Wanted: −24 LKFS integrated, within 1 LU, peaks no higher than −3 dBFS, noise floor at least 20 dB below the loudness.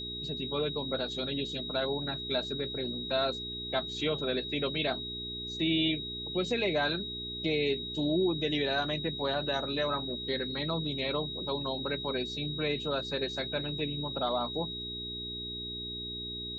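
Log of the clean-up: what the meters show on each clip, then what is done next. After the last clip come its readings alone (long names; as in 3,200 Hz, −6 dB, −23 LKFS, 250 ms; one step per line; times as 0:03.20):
mains hum 60 Hz; hum harmonics up to 420 Hz; level of the hum −42 dBFS; interfering tone 3,800 Hz; level of the tone −37 dBFS; integrated loudness −32.0 LKFS; sample peak −17.5 dBFS; target loudness −24.0 LKFS
→ hum removal 60 Hz, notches 7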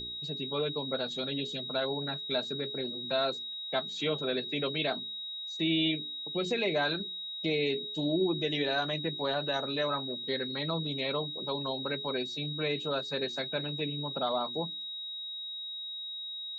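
mains hum none found; interfering tone 3,800 Hz; level of the tone −37 dBFS
→ notch filter 3,800 Hz, Q 30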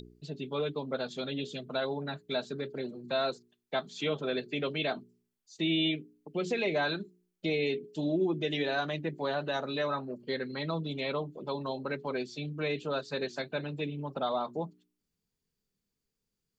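interfering tone none found; integrated loudness −33.5 LKFS; sample peak −19.5 dBFS; target loudness −24.0 LKFS
→ level +9.5 dB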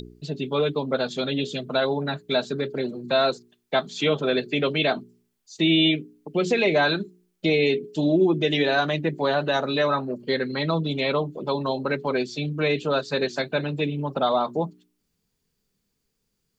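integrated loudness −24.0 LKFS; sample peak −10.0 dBFS; background noise floor −76 dBFS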